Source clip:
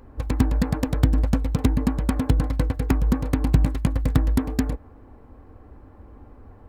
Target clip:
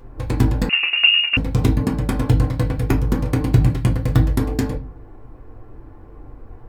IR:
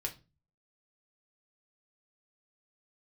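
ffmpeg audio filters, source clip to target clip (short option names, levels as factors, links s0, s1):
-filter_complex "[1:a]atrim=start_sample=2205[s0];[0:a][s0]afir=irnorm=-1:irlink=0,asettb=1/sr,asplit=3[s1][s2][s3];[s1]atrim=end=0.694[s4];[s2]atrim=start=0.69:end=1.37,asetpts=PTS-STARTPTS,afade=t=in:d=0.004:c=qsin,afade=t=out:st=0.676:d=0.004:c=qsin,lowpass=f=2500:t=q:w=0.5098,lowpass=f=2500:t=q:w=0.6013,lowpass=f=2500:t=q:w=0.9,lowpass=f=2500:t=q:w=2.563,afreqshift=-2900[s5];[s3]atrim=start=1.366[s6];[s4][s5]acrossfade=d=0.004:c1=hsin:c2=qsin[s7];[s7][s6]acrossfade=d=0.004:c1=qsin:c2=hsin,volume=1.5"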